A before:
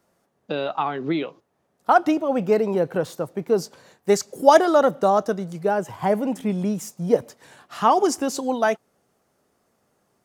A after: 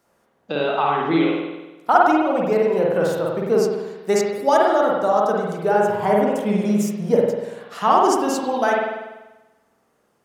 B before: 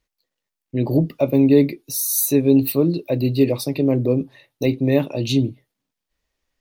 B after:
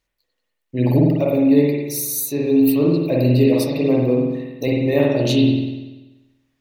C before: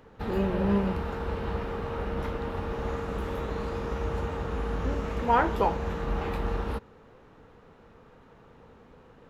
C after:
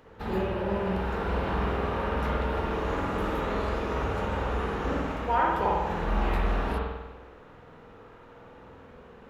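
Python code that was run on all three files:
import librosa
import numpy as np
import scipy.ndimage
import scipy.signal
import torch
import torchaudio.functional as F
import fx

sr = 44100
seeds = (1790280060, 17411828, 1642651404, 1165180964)

y = fx.low_shelf(x, sr, hz=340.0, db=-4.5)
y = fx.rider(y, sr, range_db=4, speed_s=0.5)
y = fx.rev_spring(y, sr, rt60_s=1.1, pass_ms=(48,), chirp_ms=50, drr_db=-3.0)
y = F.gain(torch.from_numpy(y), -1.0).numpy()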